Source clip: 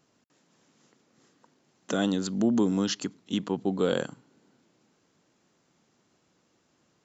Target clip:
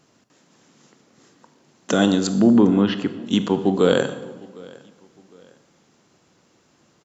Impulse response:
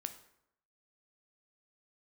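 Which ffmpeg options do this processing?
-filter_complex "[0:a]asettb=1/sr,asplit=3[a][b][c];[a]atrim=end=2.274[d];[b]atrim=start=2.27:end=3.22,asetpts=PTS-STARTPTS,afade=t=in:d=0.004:c=qsin,afade=t=out:st=0.946:d=0.004:c=qsin,lowpass=f=2.9k:w=0.5412,lowpass=f=2.9k:w=1.3066[e];[c]atrim=start=3.216[f];[d][e]acrossfade=d=0.004:c1=hsin:c2=qsin[g];[g][f]acrossfade=d=0.004:c1=qsin:c2=hsin,aecho=1:1:757|1514:0.0668|0.0234,asplit=2[h][i];[1:a]atrim=start_sample=2205,asetrate=25137,aresample=44100[j];[i][j]afir=irnorm=-1:irlink=0,volume=6.5dB[k];[h][k]amix=inputs=2:normalize=0,volume=-1dB"

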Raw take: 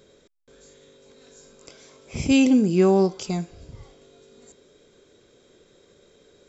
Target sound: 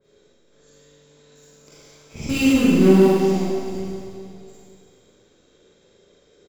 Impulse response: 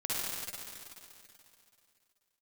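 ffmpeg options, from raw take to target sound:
-filter_complex "[0:a]asplit=2[a][b];[b]acrusher=bits=4:dc=4:mix=0:aa=0.000001,volume=-7dB[c];[a][c]amix=inputs=2:normalize=0,asplit=2[d][e];[e]adelay=932.9,volume=-22dB,highshelf=f=4k:g=-21[f];[d][f]amix=inputs=2:normalize=0[g];[1:a]atrim=start_sample=2205,asetrate=57330,aresample=44100[h];[g][h]afir=irnorm=-1:irlink=0,adynamicequalizer=threshold=0.02:dfrequency=2600:dqfactor=0.7:tfrequency=2600:tqfactor=0.7:attack=5:release=100:ratio=0.375:range=2:mode=cutabove:tftype=highshelf,volume=-4.5dB"

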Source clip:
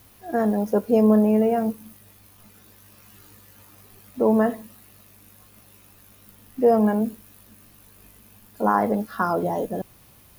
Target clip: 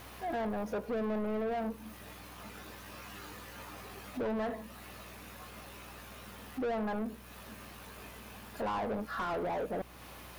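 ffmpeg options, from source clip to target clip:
-filter_complex "[0:a]acompressor=threshold=-40dB:ratio=2,asplit=2[a][b];[b]highpass=f=720:p=1,volume=26dB,asoftclip=type=tanh:threshold=-20.5dB[c];[a][c]amix=inputs=2:normalize=0,lowpass=f=1.8k:p=1,volume=-6dB,aeval=exprs='val(0)+0.00398*(sin(2*PI*60*n/s)+sin(2*PI*2*60*n/s)/2+sin(2*PI*3*60*n/s)/3+sin(2*PI*4*60*n/s)/4+sin(2*PI*5*60*n/s)/5)':c=same,volume=-6.5dB"

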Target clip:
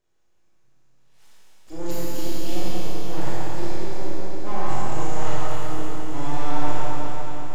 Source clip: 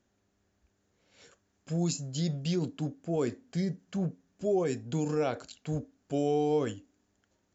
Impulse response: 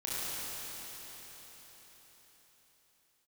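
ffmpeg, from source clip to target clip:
-filter_complex "[0:a]asplit=2[a][b];[b]asetrate=52444,aresample=44100,atempo=0.840896,volume=-18dB[c];[a][c]amix=inputs=2:normalize=0,aeval=exprs='abs(val(0))':c=same[d];[1:a]atrim=start_sample=2205[e];[d][e]afir=irnorm=-1:irlink=0"

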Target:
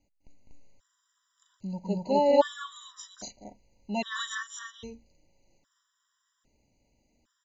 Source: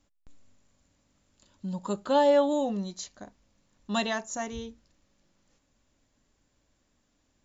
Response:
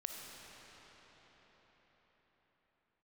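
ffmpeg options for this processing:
-af "aecho=1:1:204.1|242:0.562|1,afftfilt=real='re*gt(sin(2*PI*0.62*pts/sr)*(1-2*mod(floor(b*sr/1024/990),2)),0)':imag='im*gt(sin(2*PI*0.62*pts/sr)*(1-2*mod(floor(b*sr/1024/990),2)),0)':win_size=1024:overlap=0.75,volume=-1.5dB"

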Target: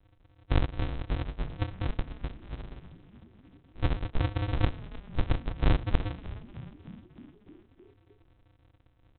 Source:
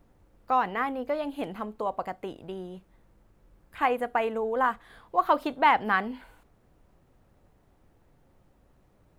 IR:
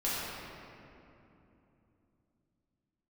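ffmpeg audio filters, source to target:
-filter_complex "[0:a]aeval=exprs='0.355*(cos(1*acos(clip(val(0)/0.355,-1,1)))-cos(1*PI/2))+0.0141*(cos(6*acos(clip(val(0)/0.355,-1,1)))-cos(6*PI/2))':c=same,afreqshift=-330,aresample=8000,acrusher=samples=39:mix=1:aa=0.000001,aresample=44100,asplit=8[a][b][c][d][e][f][g][h];[b]adelay=307,afreqshift=-62,volume=-16dB[i];[c]adelay=614,afreqshift=-124,volume=-19.7dB[j];[d]adelay=921,afreqshift=-186,volume=-23.5dB[k];[e]adelay=1228,afreqshift=-248,volume=-27.2dB[l];[f]adelay=1535,afreqshift=-310,volume=-31dB[m];[g]adelay=1842,afreqshift=-372,volume=-34.7dB[n];[h]adelay=2149,afreqshift=-434,volume=-38.5dB[o];[a][i][j][k][l][m][n][o]amix=inputs=8:normalize=0,volume=-1dB"

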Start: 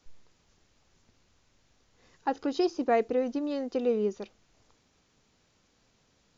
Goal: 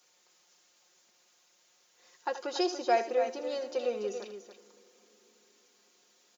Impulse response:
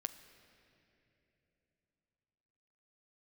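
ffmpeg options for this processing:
-filter_complex "[0:a]highpass=460,aemphasis=mode=production:type=50fm,aecho=1:1:5.6:0.65,aecho=1:1:78.72|285.7:0.251|0.355,asplit=2[a][b];[1:a]atrim=start_sample=2205,asetrate=27783,aresample=44100[c];[b][c]afir=irnorm=-1:irlink=0,volume=-7.5dB[d];[a][d]amix=inputs=2:normalize=0,volume=-5dB"

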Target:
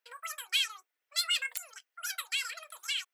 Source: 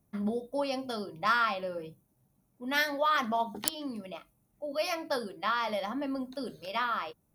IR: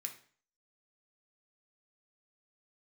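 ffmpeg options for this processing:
-af "highpass=960,asetrate=103194,aresample=44100"

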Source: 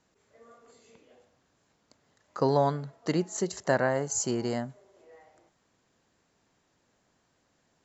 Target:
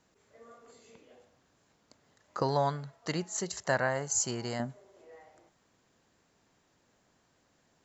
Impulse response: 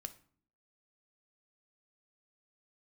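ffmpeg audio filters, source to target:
-filter_complex "[0:a]asettb=1/sr,asplit=3[a][b][c];[a]atrim=end=2.424[d];[b]atrim=start=2.42:end=4.6,asetpts=PTS-STARTPTS,afade=t=in:d=0.004:c=qsin,afade=t=out:st=2.176:d=0.004:c=qsin,equalizer=f=310:w=0.61:g=-9.5[e];[c]atrim=start=4.596[f];[d][e]acrossfade=d=0.004:c1=hsin:c2=qsin[g];[g][f]acrossfade=d=0.004:c1=qsin:c2=hsin,volume=1dB"

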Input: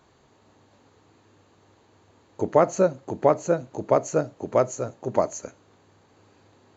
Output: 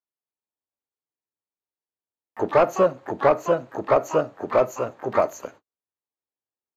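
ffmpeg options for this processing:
-filter_complex "[0:a]agate=range=-47dB:threshold=-47dB:ratio=16:detection=peak,asplit=2[a][b];[b]highpass=f=720:p=1,volume=14dB,asoftclip=type=tanh:threshold=-4.5dB[c];[a][c]amix=inputs=2:normalize=0,lowpass=f=1.2k:p=1,volume=-6dB,asplit=2[d][e];[e]asetrate=88200,aresample=44100,atempo=0.5,volume=-10dB[f];[d][f]amix=inputs=2:normalize=0,volume=-1dB"

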